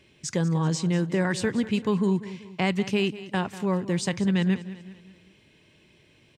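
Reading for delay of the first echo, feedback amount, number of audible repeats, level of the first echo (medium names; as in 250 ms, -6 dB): 193 ms, 46%, 3, -15.5 dB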